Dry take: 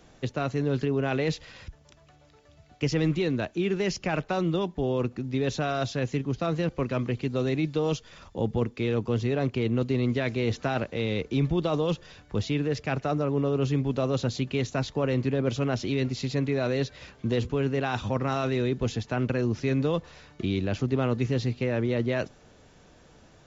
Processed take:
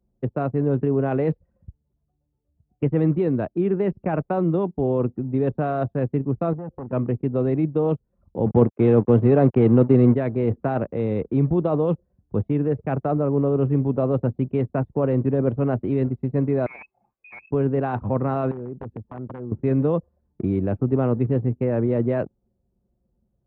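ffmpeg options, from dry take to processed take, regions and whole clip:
-filter_complex "[0:a]asettb=1/sr,asplit=3[a][b][c];[a]atrim=end=6.534[d];[b]atrim=start=6.53:end=6.93,asetpts=PTS-STARTPTS,afade=t=in:d=0.004:c=qsin,afade=t=out:st=0.396:d=0.004:c=qsin,asoftclip=type=hard:threshold=-28dB,acompressor=threshold=-35dB:ratio=10:attack=3.2:release=140:knee=1:detection=peak,asuperstop=centerf=2300:order=4:qfactor=6[e];[c]atrim=start=6.926[f];[d][e]acrossfade=d=0.004:c1=hsin:c2=qsin[g];[g][f]acrossfade=d=0.004:c1=qsin:c2=hsin,asettb=1/sr,asplit=3[h][i][j];[h]atrim=end=8.464[k];[i]atrim=start=8.46:end=10.15,asetpts=PTS-STARTPTS,afade=t=in:d=0.004:c=qsin,afade=t=out:st=1.686:d=0.004:c=qsin,acontrast=70,highpass=81,aeval=exprs='sgn(val(0))*max(abs(val(0))-0.015,0)':c=same[l];[j]atrim=start=10.146[m];[k][l]acrossfade=d=0.004:c1=hsin:c2=qsin[n];[n][m]acrossfade=d=0.004:c1=qsin:c2=hsin,asettb=1/sr,asplit=3[o][p][q];[o]atrim=end=16.664[r];[p]atrim=start=16.66:end=17.51,asetpts=PTS-STARTPTS,afade=t=in:d=0.004:c=qsin,afade=t=out:st=0.846:d=0.004:c=qsin,bandreject=f=60:t=h:w=6,bandreject=f=120:t=h:w=6,asoftclip=type=hard:threshold=-26.5dB,lowpass=f=2.3k:t=q:w=0.5098,lowpass=f=2.3k:t=q:w=0.6013,lowpass=f=2.3k:t=q:w=0.9,lowpass=f=2.3k:t=q:w=2.563,afreqshift=-2700[s];[q]atrim=start=17.506[t];[r][s]acrossfade=d=0.004:c1=hsin:c2=qsin[u];[u][t]acrossfade=d=0.004:c1=qsin:c2=hsin,asettb=1/sr,asplit=3[v][w][x];[v]atrim=end=18.514[y];[w]atrim=start=18.51:end=19.52,asetpts=PTS-STARTPTS,afade=t=in:d=0.004:c=qsin,afade=t=out:st=1.006:d=0.004:c=qsin,acompressor=threshold=-34dB:ratio=6:attack=3.2:release=140:knee=1:detection=peak,aeval=exprs='(mod(28.2*val(0)+1,2)-1)/28.2':c=same[z];[x]atrim=start=19.516[aa];[y][z]acrossfade=d=0.004:c1=hsin:c2=qsin[ab];[ab][aa]acrossfade=d=0.004:c1=qsin:c2=hsin,lowpass=1k,anlmdn=0.631,highpass=79,volume=5.5dB"

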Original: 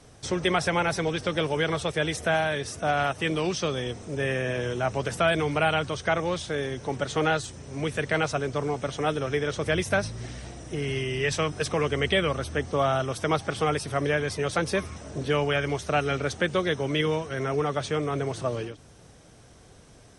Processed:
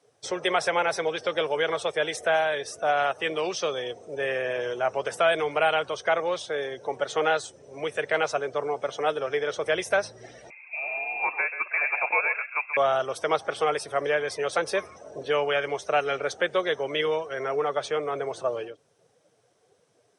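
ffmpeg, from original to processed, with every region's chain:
-filter_complex "[0:a]asettb=1/sr,asplit=3[a][b][c];[a]atrim=end=10.504[d];[b]atrim=start=10.5:end=12.77,asetpts=PTS-STARTPTS,afade=t=in:d=0.004:c=qsin,afade=t=out:st=2.266:d=0.004:c=qsin,highpass=270,lowpass=f=2.4k:t=q:w=0.5098,lowpass=f=2.4k:t=q:w=0.6013,lowpass=f=2.4k:t=q:w=0.9,lowpass=f=2.4k:t=q:w=2.563,afreqshift=-2800,aecho=1:1:133:0.316,atrim=end_sample=100107[e];[c]atrim=start=12.766[f];[d][e]acrossfade=d=0.004:c1=hsin:c2=qsin[g];[g][f]acrossfade=d=0.004:c1=qsin:c2=hsin,highpass=140,afftdn=nr=14:nf=-44,lowshelf=f=340:t=q:w=1.5:g=-11"

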